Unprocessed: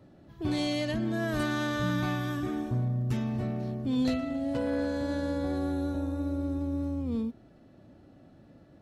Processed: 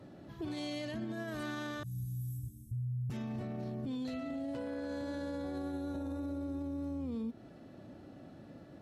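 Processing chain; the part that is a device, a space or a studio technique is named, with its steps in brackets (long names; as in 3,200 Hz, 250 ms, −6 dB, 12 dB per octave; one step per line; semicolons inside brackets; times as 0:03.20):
0:01.83–0:03.10: elliptic band-stop filter 110–9,500 Hz, stop band 80 dB
podcast mastering chain (high-pass filter 110 Hz 6 dB per octave; downward compressor 2 to 1, threshold −39 dBFS, peak gain reduction 8 dB; brickwall limiter −36.5 dBFS, peak gain reduction 10 dB; level +4.5 dB; MP3 128 kbit/s 32,000 Hz)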